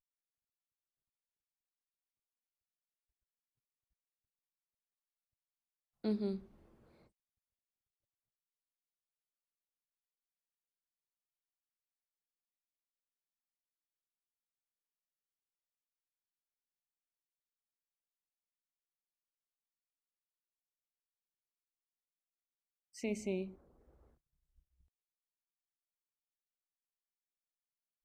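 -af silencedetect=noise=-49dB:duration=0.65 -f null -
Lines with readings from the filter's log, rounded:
silence_start: 0.00
silence_end: 6.04 | silence_duration: 6.04
silence_start: 6.43
silence_end: 22.95 | silence_duration: 16.52
silence_start: 23.54
silence_end: 28.04 | silence_duration: 4.50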